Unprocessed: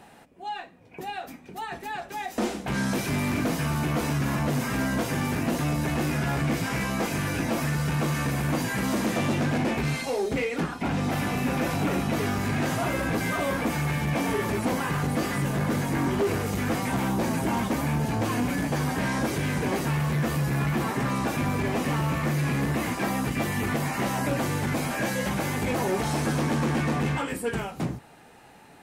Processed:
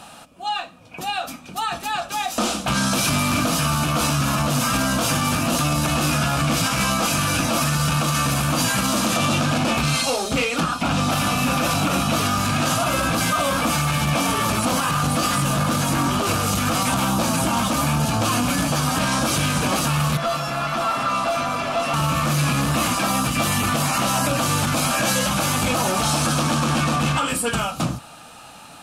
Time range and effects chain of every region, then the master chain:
20.17–21.94 s: feedback comb 680 Hz, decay 0.28 s, mix 90% + overdrive pedal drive 28 dB, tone 1.4 kHz, clips at -20.5 dBFS
whole clip: graphic EQ with 31 bands 400 Hz -12 dB, 630 Hz +4 dB, 1.25 kHz +12 dB, 2 kHz -10 dB; peak limiter -20 dBFS; high-order bell 5.3 kHz +9 dB 2.6 oct; trim +6.5 dB

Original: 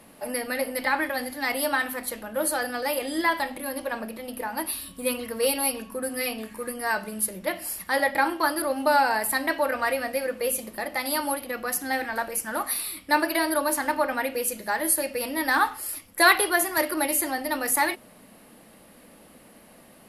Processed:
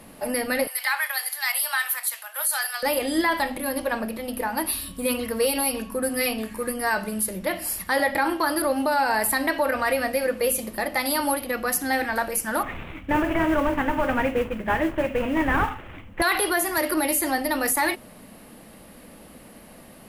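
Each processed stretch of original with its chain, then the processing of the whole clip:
0.67–2.83 s: Bessel high-pass 1.3 kHz, order 8 + treble shelf 7.5 kHz +10 dB
12.63–16.22 s: CVSD coder 16 kbps + bass shelf 200 Hz +8.5 dB + modulation noise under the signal 27 dB
whole clip: bass shelf 130 Hz +8 dB; peak limiter -17 dBFS; trim +4 dB

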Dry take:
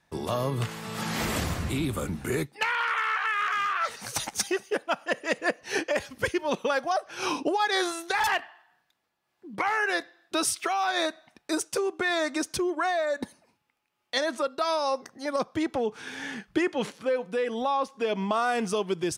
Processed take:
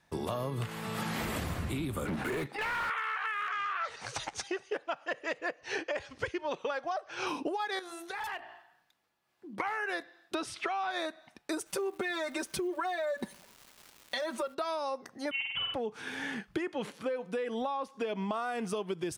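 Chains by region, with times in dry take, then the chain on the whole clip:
2.05–2.90 s: level held to a coarse grid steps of 11 dB + overdrive pedal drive 30 dB, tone 2 kHz, clips at -22.5 dBFS
3.49–7.27 s: low-pass 7.1 kHz 24 dB/octave + peaking EQ 210 Hz -14.5 dB 0.49 oct
7.79–9.60 s: de-hum 57.55 Hz, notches 17 + compression 2:1, threshold -45 dBFS
10.35–10.91 s: companding laws mixed up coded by mu + low-pass 4.8 kHz
11.65–14.53 s: comb 5.2 ms, depth 97% + compression 2:1, threshold -25 dBFS + crackle 600 per s -43 dBFS
15.31–15.74 s: frequency inversion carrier 3.3 kHz + flutter echo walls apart 8.5 m, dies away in 0.83 s
whole clip: compression, threshold -31 dBFS; dynamic bell 5.9 kHz, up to -6 dB, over -55 dBFS, Q 1.2

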